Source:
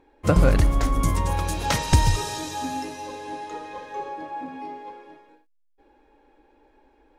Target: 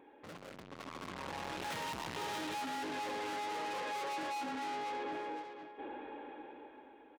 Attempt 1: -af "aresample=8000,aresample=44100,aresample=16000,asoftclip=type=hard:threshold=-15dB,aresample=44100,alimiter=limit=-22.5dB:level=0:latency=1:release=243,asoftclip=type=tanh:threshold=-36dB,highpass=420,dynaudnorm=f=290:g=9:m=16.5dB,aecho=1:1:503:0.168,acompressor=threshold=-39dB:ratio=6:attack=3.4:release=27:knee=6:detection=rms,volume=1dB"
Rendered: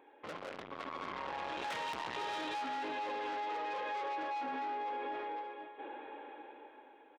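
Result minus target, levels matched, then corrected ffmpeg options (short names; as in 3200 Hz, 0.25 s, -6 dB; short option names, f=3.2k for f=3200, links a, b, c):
250 Hz band -3.5 dB; soft clip: distortion -4 dB
-af "aresample=8000,aresample=44100,aresample=16000,asoftclip=type=hard:threshold=-15dB,aresample=44100,alimiter=limit=-22.5dB:level=0:latency=1:release=243,asoftclip=type=tanh:threshold=-47.5dB,highpass=190,dynaudnorm=f=290:g=9:m=16.5dB,aecho=1:1:503:0.168,acompressor=threshold=-39dB:ratio=6:attack=3.4:release=27:knee=6:detection=rms,volume=1dB"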